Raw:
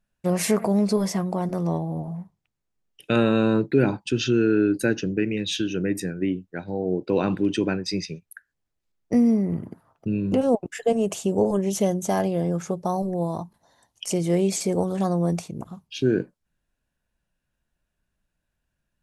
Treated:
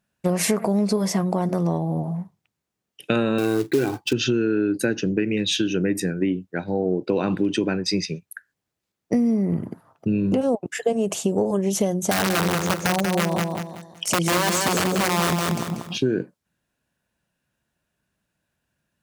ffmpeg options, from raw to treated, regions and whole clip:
-filter_complex "[0:a]asettb=1/sr,asplit=3[a][b][c];[a]atrim=end=3.384[d];[b]atrim=start=3.38:end=4.13,asetpts=PTS-STARTPTS,afade=t=in:d=0.004:c=qsin,afade=t=out:st=0.746:d=0.004:c=qsin,lowpass=8.3k,aecho=1:1:2.6:0.67,atrim=end_sample=33075,acrusher=bits=4:mode=log:mix=0:aa=0.000001[e];[c]atrim=start=4.126[f];[d][e]acrossfade=d=0.004:c1=hsin:c2=qsin[g];[g][f]acrossfade=d=0.004:c1=qsin:c2=hsin,asettb=1/sr,asplit=3[h][i][j];[h]atrim=end=12.114[k];[i]atrim=start=12.11:end=15.98,asetpts=PTS-STARTPTS,afade=t=in:d=0.004:c=qsin,afade=t=out:st=3.866:d=0.004:c=qsin,aeval=exprs='(mod(7.94*val(0)+1,2)-1)/7.94':c=same,aecho=1:1:188|376|564|752:0.562|0.191|0.065|0.0221,atrim=end_sample=170667[l];[j]atrim=start=15.976[m];[k][l]acrossfade=d=0.004:c1=hsin:c2=qsin[n];[n][m]acrossfade=d=0.004:c1=qsin:c2=hsin,highpass=99,acompressor=threshold=-23dB:ratio=6,volume=5.5dB"

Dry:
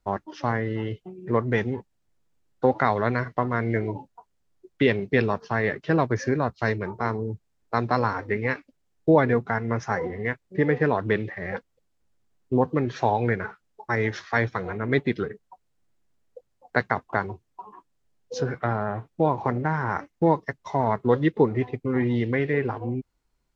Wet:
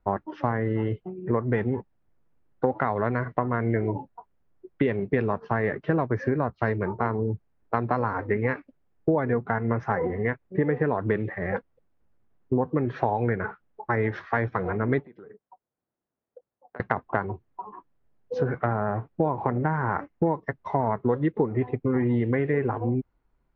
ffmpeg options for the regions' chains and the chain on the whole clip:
-filter_complex "[0:a]asettb=1/sr,asplit=3[a][b][c];[a]atrim=end=15.054[d];[b]atrim=start=15.05:end=16.8,asetpts=PTS-STARTPTS,afade=t=in:d=0.004:c=qsin,afade=t=out:st=1.746:d=0.004:c=qsin,equalizer=f=3k:w=0.32:g=-11.5,acompressor=threshold=-38dB:ratio=8:attack=3.2:release=140:knee=1:detection=peak,highpass=f=700:p=1[e];[c]atrim=start=16.796[f];[d][e]acrossfade=d=0.004:c1=hsin:c2=qsin[g];[g][f]acrossfade=d=0.004:c1=qsin:c2=hsin,lowpass=1.7k,acompressor=threshold=-24dB:ratio=6,volume=4dB"

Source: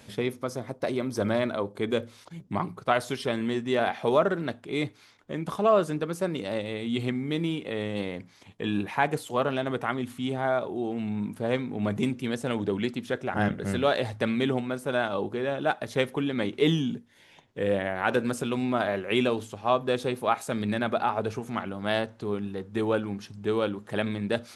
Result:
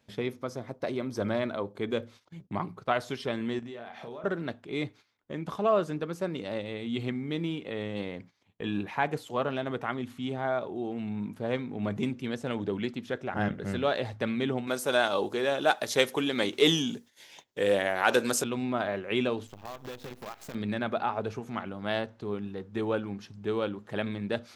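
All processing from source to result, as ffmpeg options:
-filter_complex "[0:a]asettb=1/sr,asplit=3[a][b][c];[a]atrim=end=3.594[d];[b]atrim=start=3.59:end=4.24,asetpts=PTS-STARTPTS,afade=t=in:d=0.004:c=qsin,afade=t=out:st=0.646:d=0.004:c=qsin,acompressor=threshold=-35dB:ratio=12:attack=3.2:release=140:knee=1:detection=peak,asplit=2[e][f];[f]adelay=34,volume=-7dB[g];[e][g]amix=inputs=2:normalize=0,atrim=end_sample=28665[h];[c]atrim=start=4.236[i];[d][h]acrossfade=d=0.004:c1=hsin:c2=qsin[j];[j][i]acrossfade=d=0.004:c1=qsin:c2=hsin,asettb=1/sr,asplit=3[k][l][m];[k]atrim=end=14.674[n];[l]atrim=start=14.67:end=18.44,asetpts=PTS-STARTPTS,afade=t=in:d=0.004:c=qsin,afade=t=out:st=3.766:d=0.004:c=qsin,bass=f=250:g=-10,treble=f=4k:g=15,acontrast=42[o];[m]atrim=start=18.436[p];[n][o]acrossfade=d=0.004:c1=hsin:c2=qsin[q];[q][p]acrossfade=d=0.004:c1=qsin:c2=hsin,asettb=1/sr,asplit=3[r][s][t];[r]atrim=end=19.474[u];[s]atrim=start=19.47:end=20.55,asetpts=PTS-STARTPTS,afade=t=in:d=0.004:c=qsin,afade=t=out:st=1.076:d=0.004:c=qsin,lowshelf=f=79:g=10.5,acompressor=threshold=-35dB:ratio=5:attack=3.2:release=140:knee=1:detection=peak,acrusher=bits=7:dc=4:mix=0:aa=0.000001[v];[t]atrim=start=20.546[w];[u][v]acrossfade=d=0.004:c1=hsin:c2=qsin[x];[x][w]acrossfade=d=0.004:c1=qsin:c2=hsin,agate=range=-14dB:threshold=-46dB:ratio=16:detection=peak,equalizer=f=9.7k:t=o:w=0.55:g=-10,volume=-3.5dB"

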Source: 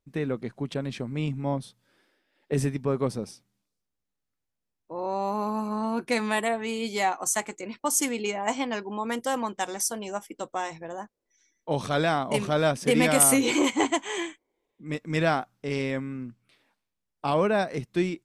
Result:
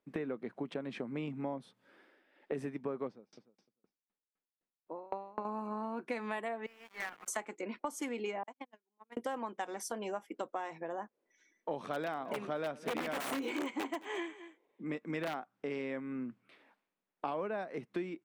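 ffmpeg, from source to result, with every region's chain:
-filter_complex "[0:a]asettb=1/sr,asplit=3[a][b][c];[a]atrim=end=3.074[d];[b]atrim=start=3.07:end=5.45,asetpts=PTS-STARTPTS,afade=t=in:d=0.004:c=qsin,afade=t=out:st=2.376:d=0.004:c=qsin,lowpass=f=5.9k:w=0.5412,lowpass=f=5.9k:w=1.3066,aecho=1:1:302|604:0.133|0.0213,atrim=end_sample=104958,aeval=exprs='val(0)*pow(10,-35*if(lt(mod(3.9*n/s,1),2*abs(3.9)/1000),1-mod(3.9*n/s,1)/(2*abs(3.9)/1000),(mod(3.9*n/s,1)-2*abs(3.9)/1000)/(1-2*abs(3.9)/1000))/20)':c=same[e];[c]atrim=start=5.446[f];[d][e]acrossfade=d=0.004:c1=hsin:c2=qsin[g];[g][f]acrossfade=d=0.004:c1=qsin:c2=hsin,asettb=1/sr,asplit=3[h][i][j];[h]atrim=end=6.664[k];[i]atrim=start=6.66:end=7.28,asetpts=PTS-STARTPTS,afade=t=in:d=0.004:c=qsin,afade=t=out:st=0.616:d=0.004:c=qsin,bandpass=f=1.7k:t=q:w=5.5,acrusher=bits=6:dc=4:mix=0:aa=0.000001[l];[j]atrim=start=7.276[m];[k][l]acrossfade=d=0.004:c1=hsin:c2=qsin[n];[n][m]acrossfade=d=0.004:c1=qsin:c2=hsin,asettb=1/sr,asplit=3[o][p][q];[o]atrim=end=8.434[r];[p]atrim=start=8.43:end=9.17,asetpts=PTS-STARTPTS,afade=t=in:d=0.004:c=qsin,afade=t=out:st=0.736:d=0.004:c=qsin,agate=range=-57dB:threshold=-25dB:ratio=16:release=100:detection=peak,acompressor=threshold=-40dB:ratio=8:attack=3.2:release=140:knee=1:detection=peak[s];[q]atrim=start=9.166[t];[r][s]acrossfade=d=0.004:c1=hsin:c2=qsin[u];[u][t]acrossfade=d=0.004:c1=qsin:c2=hsin,asettb=1/sr,asplit=3[v][w][x];[v]atrim=end=11.804[y];[w]atrim=start=11.8:end=15.35,asetpts=PTS-STARTPTS,afade=t=in:d=0.004:c=qsin,afade=t=out:st=3.546:d=0.004:c=qsin,aeval=exprs='(mod(5.31*val(0)+1,2)-1)/5.31':c=same,aecho=1:1:216:0.0841,atrim=end_sample=156555[z];[x]atrim=start=15.346[aa];[y][z]acrossfade=d=0.004:c1=hsin:c2=qsin[ab];[ab][aa]acrossfade=d=0.004:c1=qsin:c2=hsin,acrossover=split=190 2800:gain=0.0631 1 0.178[ac][ad][ae];[ac][ad][ae]amix=inputs=3:normalize=0,acompressor=threshold=-41dB:ratio=5,volume=4.5dB"

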